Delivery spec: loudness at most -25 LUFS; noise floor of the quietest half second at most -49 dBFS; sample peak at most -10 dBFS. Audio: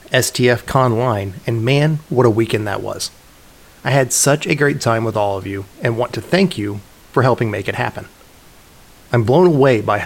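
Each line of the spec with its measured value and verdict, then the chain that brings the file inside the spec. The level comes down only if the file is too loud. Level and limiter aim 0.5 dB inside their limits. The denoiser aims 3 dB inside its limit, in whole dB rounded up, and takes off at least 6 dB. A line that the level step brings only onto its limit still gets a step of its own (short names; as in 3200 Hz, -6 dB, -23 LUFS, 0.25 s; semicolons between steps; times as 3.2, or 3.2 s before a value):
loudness -16.5 LUFS: fail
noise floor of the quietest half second -44 dBFS: fail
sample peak -1.5 dBFS: fail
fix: gain -9 dB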